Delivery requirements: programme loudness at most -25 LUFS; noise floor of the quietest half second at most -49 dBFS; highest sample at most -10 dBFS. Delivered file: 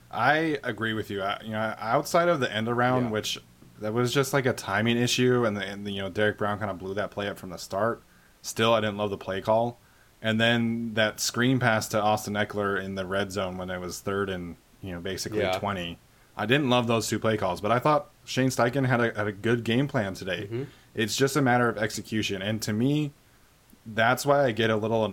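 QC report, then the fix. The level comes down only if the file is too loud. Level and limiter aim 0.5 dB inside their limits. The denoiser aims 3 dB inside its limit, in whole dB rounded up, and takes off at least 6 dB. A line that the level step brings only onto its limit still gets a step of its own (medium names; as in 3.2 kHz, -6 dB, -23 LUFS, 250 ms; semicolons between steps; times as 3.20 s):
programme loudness -26.5 LUFS: pass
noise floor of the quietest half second -59 dBFS: pass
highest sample -8.5 dBFS: fail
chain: peak limiter -10.5 dBFS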